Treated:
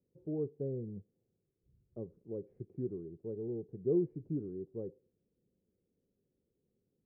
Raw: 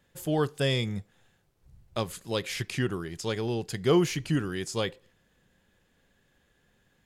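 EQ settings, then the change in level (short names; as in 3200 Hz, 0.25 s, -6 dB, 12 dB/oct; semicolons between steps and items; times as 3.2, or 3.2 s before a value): HPF 150 Hz 6 dB/oct; ladder low-pass 490 Hz, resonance 50%; low shelf 370 Hz +10 dB; -8.5 dB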